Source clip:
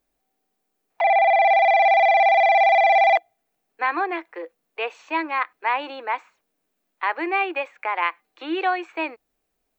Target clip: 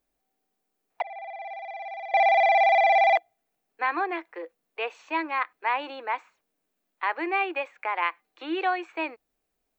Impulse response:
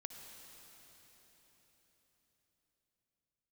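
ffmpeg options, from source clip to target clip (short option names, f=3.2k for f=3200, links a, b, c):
-filter_complex "[0:a]asettb=1/sr,asplit=3[a][b][c];[a]atrim=end=1.024[d];[b]atrim=start=1.02:end=2.14,asetpts=PTS-STARTPTS,afade=t=in:d=0.004:c=qsin,afade=t=out:st=1.116:d=0.004:c=qsin,agate=range=-33dB:threshold=-4dB:ratio=3:detection=peak[e];[c]atrim=start=2.136[f];[d][e]acrossfade=d=0.004:c1=hsin:c2=qsin[g];[g][f]acrossfade=d=0.004:c1=qsin:c2=hsin,volume=-3.5dB"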